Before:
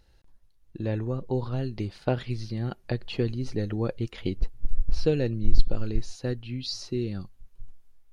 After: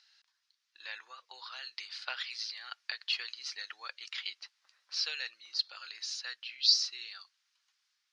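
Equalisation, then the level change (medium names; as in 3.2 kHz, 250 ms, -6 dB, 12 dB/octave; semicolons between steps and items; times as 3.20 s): high-pass 1.3 kHz 24 dB/octave; resonant low-pass 5.1 kHz, resonance Q 2.4; +2.5 dB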